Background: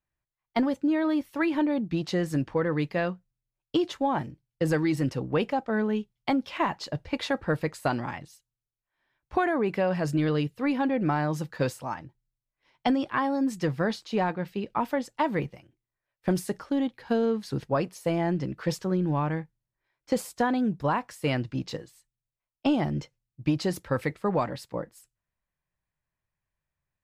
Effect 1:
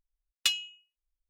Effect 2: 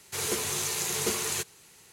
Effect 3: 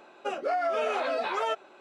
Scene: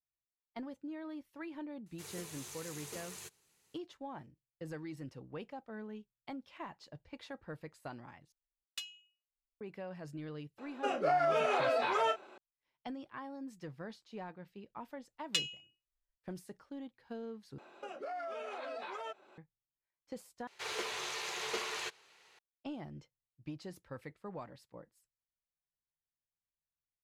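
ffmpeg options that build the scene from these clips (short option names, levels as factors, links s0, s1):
-filter_complex "[2:a]asplit=2[s0][s1];[1:a]asplit=2[s2][s3];[3:a]asplit=2[s4][s5];[0:a]volume=0.112[s6];[s4]asplit=2[s7][s8];[s8]adelay=33,volume=0.355[s9];[s7][s9]amix=inputs=2:normalize=0[s10];[s3]lowpass=8800[s11];[s5]alimiter=level_in=2:limit=0.0631:level=0:latency=1:release=365,volume=0.501[s12];[s1]acrossover=split=420 4700:gain=0.1 1 0.0794[s13][s14][s15];[s13][s14][s15]amix=inputs=3:normalize=0[s16];[s6]asplit=4[s17][s18][s19][s20];[s17]atrim=end=8.324[s21];[s2]atrim=end=1.29,asetpts=PTS-STARTPTS,volume=0.158[s22];[s18]atrim=start=9.606:end=17.584[s23];[s12]atrim=end=1.8,asetpts=PTS-STARTPTS,volume=0.596[s24];[s19]atrim=start=19.376:end=20.474[s25];[s16]atrim=end=1.92,asetpts=PTS-STARTPTS,volume=0.708[s26];[s20]atrim=start=22.386[s27];[s0]atrim=end=1.92,asetpts=PTS-STARTPTS,volume=0.126,afade=t=in:d=0.004:c=hsin,afade=t=out:st=1.916:d=0.004:c=hsin,adelay=1860[s28];[s10]atrim=end=1.8,asetpts=PTS-STARTPTS,volume=0.75,afade=t=in:d=0.004:c=hsin,afade=t=out:st=1.796:d=0.004:c=hsin,adelay=466578S[s29];[s11]atrim=end=1.29,asetpts=PTS-STARTPTS,volume=0.501,afade=t=in:d=0.004:c=hsin,afade=t=out:st=1.286:d=0.004:c=hsin,adelay=14890[s30];[s21][s22]acrossfade=d=0.004:c1=hsin:c2=hsin[s31];[s31][s23]acrossfade=d=0.004:c1=hsin:c2=hsin[s32];[s32][s24]acrossfade=d=0.004:c1=hsin:c2=hsin[s33];[s33][s25]acrossfade=d=0.004:c1=hsin:c2=hsin[s34];[s34][s26]acrossfade=d=0.004:c1=hsin:c2=hsin[s35];[s35][s27]acrossfade=d=0.004:c1=hsin:c2=hsin[s36];[s36][s28][s29][s30]amix=inputs=4:normalize=0"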